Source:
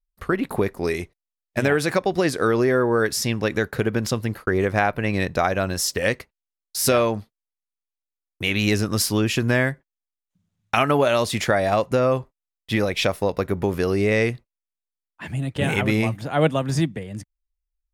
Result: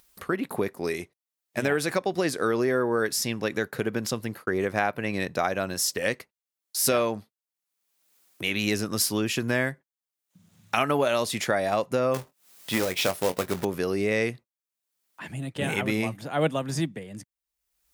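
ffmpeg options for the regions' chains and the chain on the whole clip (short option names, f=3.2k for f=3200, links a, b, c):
-filter_complex "[0:a]asettb=1/sr,asplit=3[a][b][c];[a]atrim=end=12.144[d];[b]atrim=start=12.14:end=13.65,asetpts=PTS-STARTPTS,afade=t=in:d=0.004:c=qsin,afade=t=out:st=1.506:d=0.004:c=qsin,acrusher=bits=2:mode=log:mix=0:aa=0.000001,acompressor=mode=upward:threshold=-25dB:ratio=2.5:attack=3.2:release=140:knee=2.83:detection=peak,asplit=2[e][f];[f]adelay=22,volume=-10.5dB[g];[e][g]amix=inputs=2:normalize=0,atrim=end_sample=66591[h];[c]atrim=start=13.646[i];[d][h]acrossfade=d=0.004:c1=hsin:c2=qsin[j];[j][i]acrossfade=d=0.004:c1=qsin:c2=hsin,highpass=140,highshelf=f=6.5k:g=5.5,acompressor=mode=upward:threshold=-32dB:ratio=2.5,volume=-5dB"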